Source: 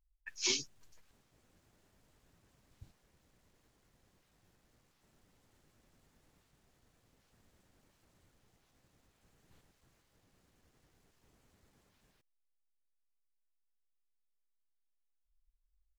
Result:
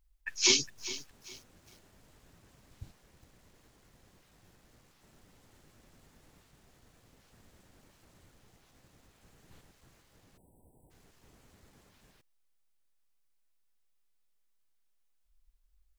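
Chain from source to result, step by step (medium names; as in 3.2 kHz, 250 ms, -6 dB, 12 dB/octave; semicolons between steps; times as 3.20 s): spectral selection erased 10.37–10.91 s, 1–7.7 kHz; bit-crushed delay 408 ms, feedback 35%, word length 9-bit, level -14.5 dB; trim +8.5 dB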